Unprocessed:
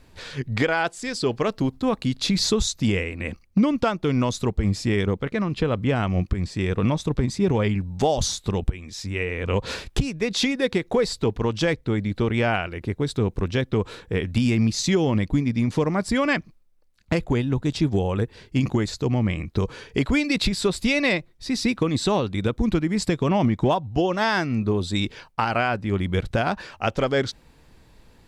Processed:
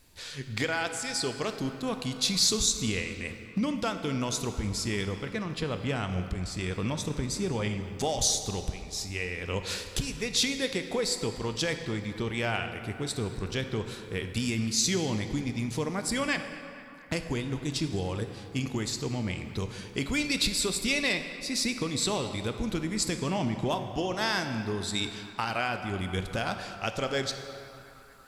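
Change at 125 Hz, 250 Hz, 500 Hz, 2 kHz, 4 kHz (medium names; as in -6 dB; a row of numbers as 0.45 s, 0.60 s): -9.5 dB, -9.0 dB, -9.0 dB, -5.0 dB, -1.0 dB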